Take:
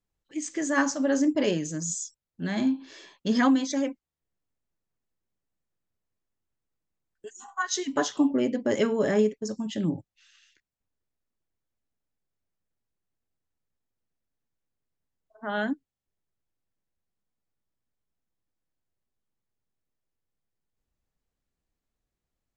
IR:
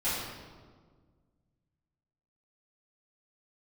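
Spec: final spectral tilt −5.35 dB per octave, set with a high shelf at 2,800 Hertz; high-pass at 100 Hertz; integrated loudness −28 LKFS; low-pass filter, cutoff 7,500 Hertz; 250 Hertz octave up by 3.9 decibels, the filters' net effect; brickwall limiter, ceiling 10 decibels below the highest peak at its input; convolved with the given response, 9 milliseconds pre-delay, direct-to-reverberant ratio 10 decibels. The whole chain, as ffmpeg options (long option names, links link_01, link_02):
-filter_complex "[0:a]highpass=100,lowpass=7500,equalizer=frequency=250:width_type=o:gain=4.5,highshelf=frequency=2800:gain=-3.5,alimiter=limit=-18.5dB:level=0:latency=1,asplit=2[link_01][link_02];[1:a]atrim=start_sample=2205,adelay=9[link_03];[link_02][link_03]afir=irnorm=-1:irlink=0,volume=-19dB[link_04];[link_01][link_04]amix=inputs=2:normalize=0"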